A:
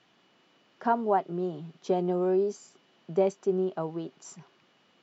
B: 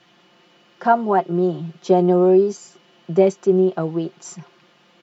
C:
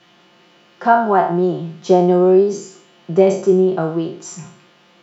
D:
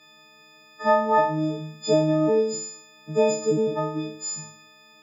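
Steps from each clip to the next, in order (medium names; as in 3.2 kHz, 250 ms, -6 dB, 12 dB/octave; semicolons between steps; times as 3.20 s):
comb 5.7 ms, depth 71%; trim +8 dB
spectral sustain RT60 0.52 s; trim +2 dB
partials quantised in pitch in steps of 6 st; trim -8.5 dB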